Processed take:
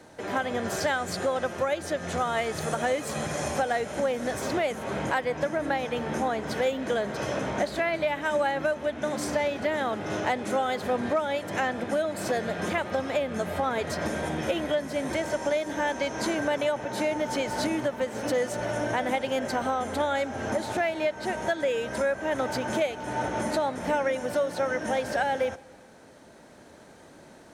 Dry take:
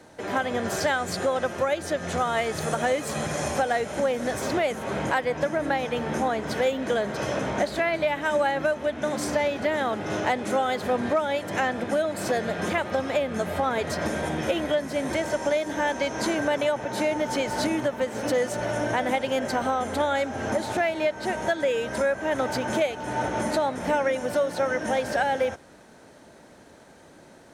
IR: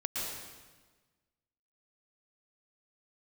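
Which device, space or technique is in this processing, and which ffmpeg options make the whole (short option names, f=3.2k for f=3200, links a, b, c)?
ducked reverb: -filter_complex "[0:a]asplit=3[a][b][c];[1:a]atrim=start_sample=2205[d];[b][d]afir=irnorm=-1:irlink=0[e];[c]apad=whole_len=1214323[f];[e][f]sidechaincompress=threshold=-40dB:ratio=8:attack=16:release=970,volume=-10dB[g];[a][g]amix=inputs=2:normalize=0,volume=-2.5dB"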